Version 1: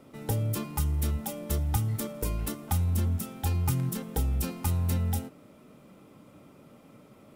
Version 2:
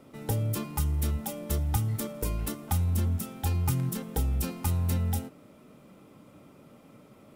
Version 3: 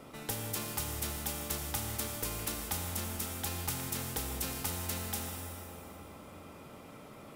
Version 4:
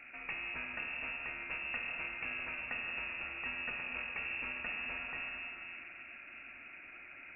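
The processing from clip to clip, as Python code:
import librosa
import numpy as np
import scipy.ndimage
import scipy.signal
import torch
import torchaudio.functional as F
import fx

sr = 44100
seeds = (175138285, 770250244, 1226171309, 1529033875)

y1 = x
y2 = fx.rev_plate(y1, sr, seeds[0], rt60_s=2.8, hf_ratio=0.75, predelay_ms=0, drr_db=4.0)
y2 = fx.spectral_comp(y2, sr, ratio=2.0)
y2 = F.gain(torch.from_numpy(y2), -4.0).numpy()
y3 = fx.reverse_delay(y2, sr, ms=234, wet_db=-12)
y3 = fx.freq_invert(y3, sr, carrier_hz=2700)
y3 = F.gain(torch.from_numpy(y3), -1.5).numpy()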